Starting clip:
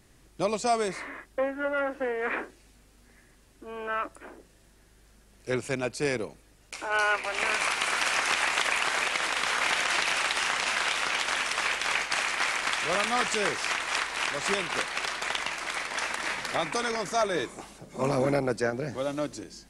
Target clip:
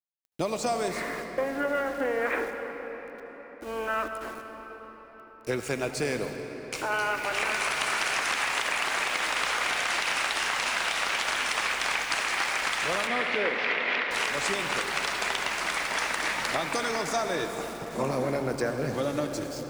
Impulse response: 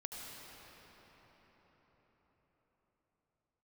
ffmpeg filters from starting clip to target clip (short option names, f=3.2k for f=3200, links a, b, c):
-filter_complex "[0:a]acompressor=threshold=-30dB:ratio=6,aeval=exprs='val(0)*gte(abs(val(0)),0.00473)':c=same,asettb=1/sr,asplit=3[a][b][c];[a]atrim=end=13.074[d];[b]atrim=start=13.07:end=14.11,asetpts=PTS-STARTPTS,afade=t=in:d=0.004:c=qsin,afade=t=out:st=1.036:d=0.004:c=qsin,highpass=230,equalizer=f=260:t=q:w=4:g=6,equalizer=f=530:t=q:w=4:g=7,equalizer=f=790:t=q:w=4:g=-4,equalizer=f=1.2k:t=q:w=4:g=-4,equalizer=f=2.1k:t=q:w=4:g=6,lowpass=f=3.6k:w=0.5412,lowpass=f=3.6k:w=1.3066[e];[c]atrim=start=14.106[f];[d][e]acrossfade=d=0.004:c1=hsin:c2=qsin[g];[g][f]acrossfade=d=0.004:c1=qsin:c2=hsin,asplit=2[h][i];[1:a]atrim=start_sample=2205[j];[i][j]afir=irnorm=-1:irlink=0,volume=2dB[k];[h][k]amix=inputs=2:normalize=0"